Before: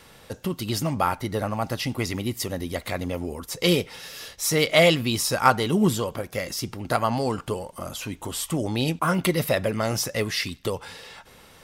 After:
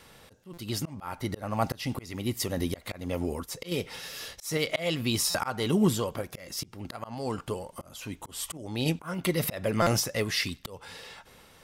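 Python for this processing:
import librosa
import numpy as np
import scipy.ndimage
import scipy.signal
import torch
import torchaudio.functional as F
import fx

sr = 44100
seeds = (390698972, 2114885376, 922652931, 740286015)

y = fx.tremolo_random(x, sr, seeds[0], hz=3.5, depth_pct=55)
y = fx.auto_swell(y, sr, attack_ms=298.0)
y = fx.buffer_glitch(y, sr, at_s=(0.53, 5.3, 9.82), block=256, repeats=7)
y = y * 10.0 ** (2.0 / 20.0)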